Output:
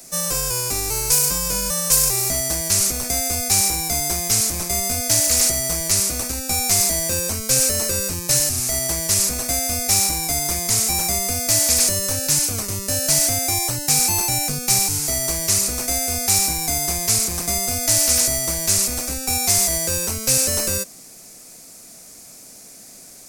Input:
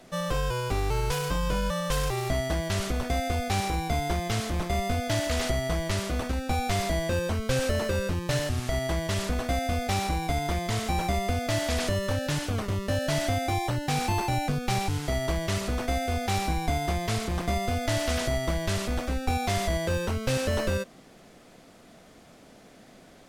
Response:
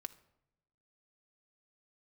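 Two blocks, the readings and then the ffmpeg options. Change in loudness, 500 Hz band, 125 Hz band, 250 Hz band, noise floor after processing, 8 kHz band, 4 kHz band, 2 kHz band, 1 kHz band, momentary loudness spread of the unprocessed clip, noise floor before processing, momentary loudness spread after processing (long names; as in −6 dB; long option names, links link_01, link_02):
+11.0 dB, 0.0 dB, −1.0 dB, 0.0 dB, −43 dBFS, +22.5 dB, +11.5 dB, +3.0 dB, 0.0 dB, 2 LU, −53 dBFS, 5 LU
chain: -filter_complex "[0:a]equalizer=frequency=2400:width_type=o:width=0.36:gain=7,acrossover=split=110|3400[link_01][link_02][link_03];[link_01]volume=31dB,asoftclip=hard,volume=-31dB[link_04];[link_03]aexciter=amount=10.8:drive=6.4:freq=4500[link_05];[link_04][link_02][link_05]amix=inputs=3:normalize=0"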